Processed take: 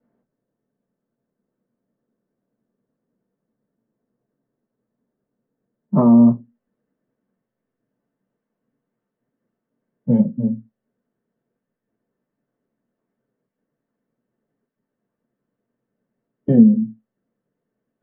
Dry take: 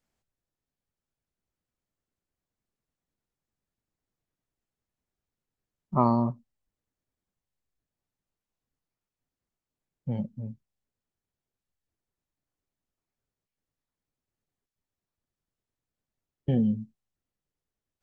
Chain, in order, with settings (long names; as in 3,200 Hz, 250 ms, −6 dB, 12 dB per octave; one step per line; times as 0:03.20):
Bessel low-pass filter 1,000 Hz, order 2, from 0:06.24 1,700 Hz
downward compressor 3 to 1, threshold −30 dBFS, peak gain reduction 9.5 dB
convolution reverb RT60 0.15 s, pre-delay 3 ms, DRR −8.5 dB
level −5 dB